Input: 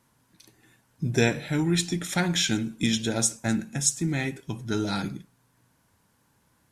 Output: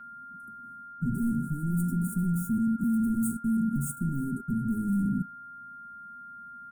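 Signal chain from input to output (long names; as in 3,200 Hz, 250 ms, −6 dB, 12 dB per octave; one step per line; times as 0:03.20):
high-shelf EQ 2,200 Hz −10 dB
hollow resonant body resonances 240/390 Hz, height 10 dB, ringing for 40 ms
leveller curve on the samples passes 3
in parallel at +2 dB: brickwall limiter −14 dBFS, peak gain reduction 10.5 dB
on the sum: hard clipping −18.5 dBFS, distortion −5 dB
reversed playback
downward compressor 6 to 1, threshold −28 dBFS, peak gain reduction 8 dB
reversed playback
Chebyshev band-stop filter 270–8,900 Hz, order 4
steady tone 1,400 Hz −46 dBFS
comb filter 5 ms, depth 55%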